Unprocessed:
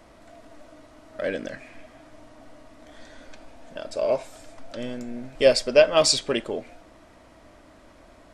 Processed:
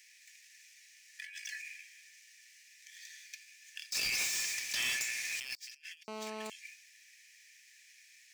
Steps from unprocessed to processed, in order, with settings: median filter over 5 samples; rippled Chebyshev high-pass 1.7 kHz, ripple 9 dB; treble shelf 5.1 kHz +10.5 dB; compressor with a negative ratio -49 dBFS, ratio -1; 1.22–1.62 s: comb 3.6 ms, depth 83%; 3.92–5.56 s: waveshaping leveller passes 5; 6.08–6.50 s: mobile phone buzz -38 dBFS; trim -4.5 dB

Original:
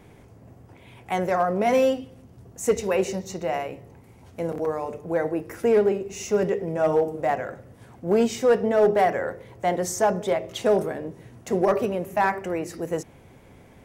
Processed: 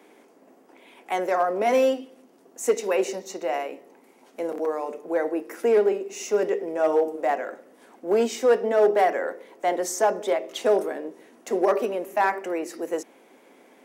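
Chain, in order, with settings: steep high-pass 250 Hz 36 dB/octave

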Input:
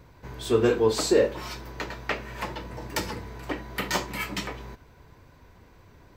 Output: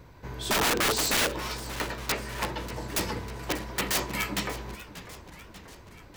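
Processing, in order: integer overflow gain 21 dB; modulated delay 591 ms, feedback 60%, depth 208 cents, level -15 dB; trim +1.5 dB

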